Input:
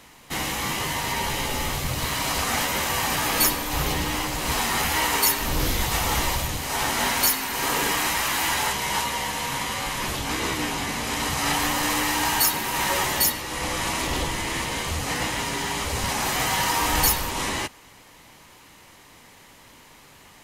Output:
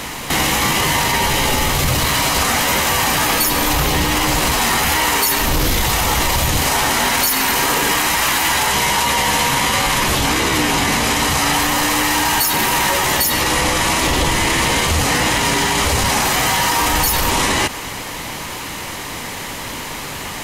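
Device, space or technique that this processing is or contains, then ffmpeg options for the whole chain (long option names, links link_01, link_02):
loud club master: -af "acompressor=threshold=-27dB:ratio=2.5,asoftclip=type=hard:threshold=-17.5dB,alimiter=level_in=29dB:limit=-1dB:release=50:level=0:latency=1,volume=-6.5dB"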